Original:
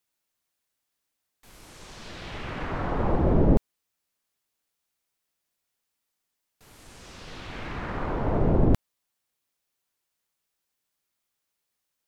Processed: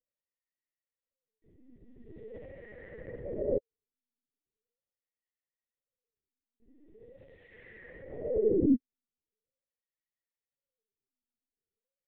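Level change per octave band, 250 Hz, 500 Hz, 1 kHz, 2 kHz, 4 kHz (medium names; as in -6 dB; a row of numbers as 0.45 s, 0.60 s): -5.0 dB, -2.5 dB, under -25 dB, -14.5 dB, under -25 dB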